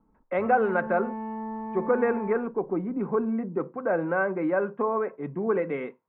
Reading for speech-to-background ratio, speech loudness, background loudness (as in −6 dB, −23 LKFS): 9.0 dB, −27.5 LKFS, −36.5 LKFS